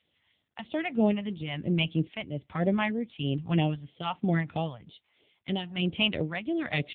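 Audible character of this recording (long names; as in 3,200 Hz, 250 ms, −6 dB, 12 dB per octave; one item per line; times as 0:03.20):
phaser sweep stages 2, 3.1 Hz, lowest notch 350–1,400 Hz
tremolo triangle 1.2 Hz, depth 70%
AMR narrowband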